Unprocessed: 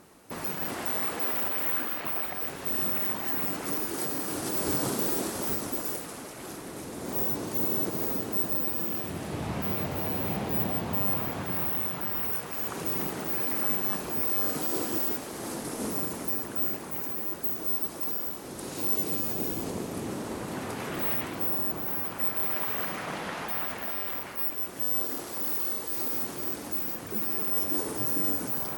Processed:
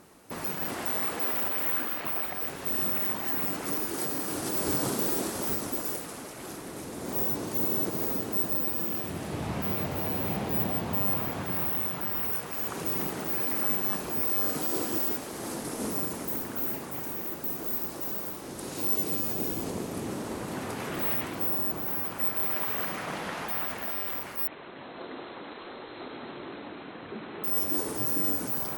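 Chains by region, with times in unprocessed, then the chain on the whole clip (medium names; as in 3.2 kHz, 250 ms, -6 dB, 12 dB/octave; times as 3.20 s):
16.25–18.52 s: flutter echo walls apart 6.7 m, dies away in 0.29 s + loudspeaker Doppler distortion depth 0.2 ms
24.47–27.44 s: brick-wall FIR low-pass 4.2 kHz + bass shelf 130 Hz -11.5 dB
whole clip: none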